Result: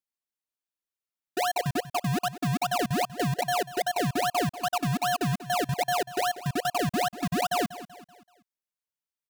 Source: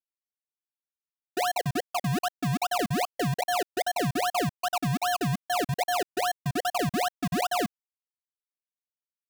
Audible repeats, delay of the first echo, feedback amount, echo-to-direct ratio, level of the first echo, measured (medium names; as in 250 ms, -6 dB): 3, 191 ms, 44%, -14.5 dB, -15.5 dB